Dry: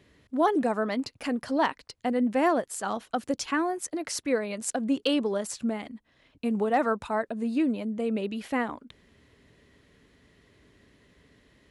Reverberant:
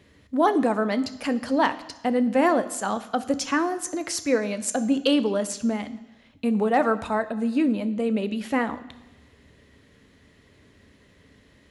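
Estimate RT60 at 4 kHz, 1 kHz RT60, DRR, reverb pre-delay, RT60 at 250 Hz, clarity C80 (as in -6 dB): 1.1 s, 1.1 s, 11.0 dB, 3 ms, 1.0 s, 17.5 dB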